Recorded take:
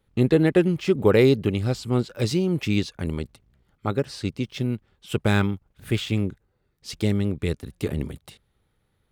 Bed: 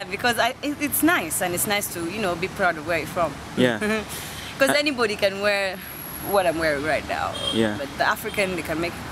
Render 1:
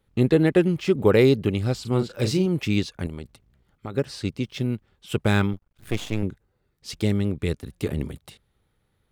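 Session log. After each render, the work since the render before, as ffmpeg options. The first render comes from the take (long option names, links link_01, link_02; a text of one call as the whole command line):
ffmpeg -i in.wav -filter_complex "[0:a]asettb=1/sr,asplit=3[link_01][link_02][link_03];[link_01]atrim=end=1.814[link_04];[link_02]atrim=start=1.81:end=2.46,asetpts=PTS-STARTPTS,afade=type=in:duration=0.004:curve=qsin,afade=type=out:start_time=0.646:duration=0.004:curve=qsin,asplit=2[link_05][link_06];[link_06]adelay=38,volume=-8dB[link_07];[link_05][link_07]amix=inputs=2:normalize=0,atrim=end_sample=28665[link_08];[link_03]atrim=start=2.456[link_09];[link_04][link_08]acrossfade=duration=0.004:curve1=hsin:curve2=qsin[link_10];[link_10][link_09]acrossfade=duration=0.004:curve1=qsin:curve2=hsin,asettb=1/sr,asplit=3[link_11][link_12][link_13];[link_11]atrim=end=3.064[link_14];[link_12]atrim=start=3.06:end=3.94,asetpts=PTS-STARTPTS,afade=type=in:duration=0.004:curve=qsin,afade=type=out:start_time=0.876:duration=0.004:curve=qsin,acompressor=threshold=-29dB:ratio=6:attack=3.2:release=140:knee=1:detection=peak[link_15];[link_13]atrim=start=3.936[link_16];[link_14][link_15]acrossfade=duration=0.004:curve1=hsin:curve2=qsin[link_17];[link_17][link_16]acrossfade=duration=0.004:curve1=qsin:curve2=hsin,asettb=1/sr,asplit=3[link_18][link_19][link_20];[link_18]atrim=end=5.534[link_21];[link_19]atrim=start=5.53:end=6.23,asetpts=PTS-STARTPTS,afade=type=in:duration=0.004:curve=qsin,afade=type=out:start_time=0.696:duration=0.004:curve=qsin,aeval=exprs='max(val(0),0)':channel_layout=same[link_22];[link_20]atrim=start=6.226[link_23];[link_21][link_22]acrossfade=duration=0.004:curve1=hsin:curve2=qsin[link_24];[link_24][link_23]acrossfade=duration=0.004:curve1=qsin:curve2=hsin" out.wav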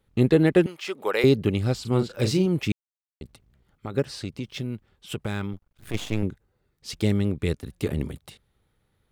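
ffmpeg -i in.wav -filter_complex "[0:a]asettb=1/sr,asplit=3[link_01][link_02][link_03];[link_01]atrim=end=0.664[link_04];[link_02]atrim=start=0.66:end=1.24,asetpts=PTS-STARTPTS,afade=type=in:duration=0.004:curve=qsin,afade=type=out:start_time=0.576:duration=0.004:curve=qsin,highpass=720[link_05];[link_03]atrim=start=1.236[link_06];[link_04][link_05]acrossfade=duration=0.004:curve1=hsin:curve2=qsin[link_07];[link_07][link_06]acrossfade=duration=0.004:curve1=qsin:curve2=hsin,asplit=3[link_08][link_09][link_10];[link_08]afade=type=out:start_time=4.16:duration=0.02[link_11];[link_09]acompressor=threshold=-28dB:ratio=3:attack=3.2:release=140:knee=1:detection=peak,afade=type=in:start_time=4.16:duration=0.02,afade=type=out:start_time=5.93:duration=0.02[link_12];[link_10]afade=type=in:start_time=5.93:duration=0.02[link_13];[link_11][link_12][link_13]amix=inputs=3:normalize=0,asplit=3[link_14][link_15][link_16];[link_14]atrim=end=2.72,asetpts=PTS-STARTPTS,afade=type=out:start_time=2.716:duration=0.004:curve=hsin[link_17];[link_15]atrim=start=2.72:end=3.21,asetpts=PTS-STARTPTS,volume=0[link_18];[link_16]atrim=start=3.21,asetpts=PTS-STARTPTS,afade=type=in:duration=0.004:curve=hsin[link_19];[link_17][link_18][link_19]concat=n=3:v=0:a=1" out.wav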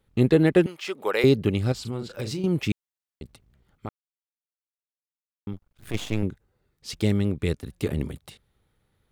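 ffmpeg -i in.wav -filter_complex "[0:a]asettb=1/sr,asplit=3[link_01][link_02][link_03];[link_01]atrim=end=1.724[link_04];[link_02]atrim=start=1.72:end=2.44,asetpts=PTS-STARTPTS,afade=type=in:duration=0.004:curve=qsin,afade=type=out:start_time=0.716:duration=0.004:curve=qsin,acompressor=threshold=-27dB:ratio=6:attack=3.2:release=140:knee=1:detection=peak[link_05];[link_03]atrim=start=2.436[link_06];[link_04][link_05]acrossfade=duration=0.004:curve1=hsin:curve2=qsin[link_07];[link_07][link_06]acrossfade=duration=0.004:curve1=qsin:curve2=hsin,asplit=3[link_08][link_09][link_10];[link_08]atrim=end=3.89,asetpts=PTS-STARTPTS,afade=type=out:start_time=3.886:duration=0.004:curve=hsin[link_11];[link_09]atrim=start=3.89:end=5.47,asetpts=PTS-STARTPTS,volume=0[link_12];[link_10]atrim=start=5.47,asetpts=PTS-STARTPTS,afade=type=in:duration=0.004:curve=hsin[link_13];[link_11][link_12][link_13]concat=n=3:v=0:a=1" out.wav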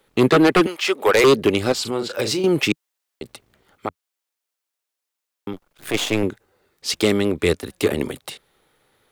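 ffmpeg -i in.wav -filter_complex "[0:a]acrossover=split=290[link_01][link_02];[link_01]flanger=delay=5.8:depth=7.7:regen=30:speed=0.35:shape=triangular[link_03];[link_02]aeval=exprs='0.335*sin(PI/2*2.82*val(0)/0.335)':channel_layout=same[link_04];[link_03][link_04]amix=inputs=2:normalize=0" out.wav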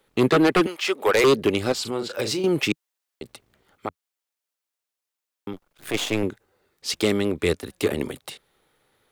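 ffmpeg -i in.wav -af "volume=-3.5dB" out.wav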